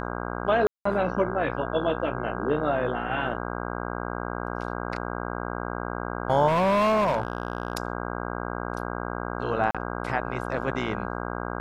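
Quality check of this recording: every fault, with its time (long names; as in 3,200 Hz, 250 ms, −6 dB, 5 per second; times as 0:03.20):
mains buzz 60 Hz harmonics 27 −32 dBFS
0:00.67–0:00.85: drop-out 184 ms
0:06.47–0:07.73: clipping −19.5 dBFS
0:09.71–0:09.75: drop-out 36 ms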